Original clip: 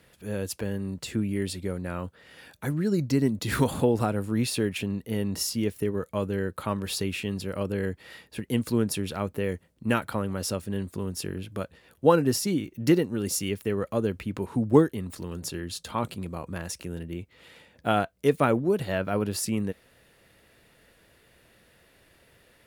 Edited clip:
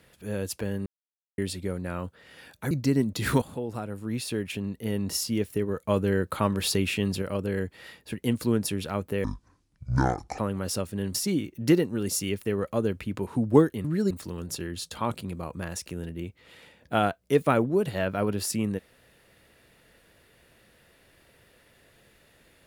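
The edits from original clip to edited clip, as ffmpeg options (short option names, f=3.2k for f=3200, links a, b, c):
-filter_complex "[0:a]asplit=12[a][b][c][d][e][f][g][h][i][j][k][l];[a]atrim=end=0.86,asetpts=PTS-STARTPTS,afade=t=out:st=0.856:d=0.004:c=hsin[m];[b]atrim=start=0.86:end=1.38,asetpts=PTS-STARTPTS,volume=0[n];[c]atrim=start=1.38:end=2.712,asetpts=PTS-STARTPTS,afade=t=in:d=0.004:c=hsin[o];[d]atrim=start=2.968:end=3.68,asetpts=PTS-STARTPTS,afade=t=out:st=0.708:d=0.004:c=hsin:silence=0.199526[p];[e]atrim=start=3.68:end=6.142,asetpts=PTS-STARTPTS,afade=t=in:d=1.65:silence=0.199526[q];[f]atrim=start=6.138:end=7.482,asetpts=PTS-STARTPTS,volume=4dB[r];[g]atrim=start=7.478:end=9.504[s];[h]atrim=start=9.5:end=10.13,asetpts=PTS-STARTPTS,asetrate=24255,aresample=44100[t];[i]atrim=start=10.126:end=10.892[u];[j]atrim=start=12.338:end=15.042[v];[k]atrim=start=2.708:end=2.972[w];[l]atrim=start=15.038[x];[m][n][o]concat=n=3:v=0:a=1[y];[p][q]concat=n=2:v=0:a=1[z];[y][z]acrossfade=d=0.004:c1=hsin:c2=hsin[aa];[aa][r]acrossfade=d=0.004:c1=hsin:c2=hsin[ab];[ab][s]acrossfade=d=0.004:c1=hsin:c2=hsin[ac];[ac][t]acrossfade=d=0.004:c1=hsin:c2=hsin[ad];[ad][u]acrossfade=d=0.004:c1=hsin:c2=hsin[ae];[ae][v]acrossfade=d=0.004:c1=hsin:c2=hsin[af];[af][w]acrossfade=d=0.004:c1=hsin:c2=hsin[ag];[ag][x]acrossfade=d=0.004:c1=hsin:c2=hsin"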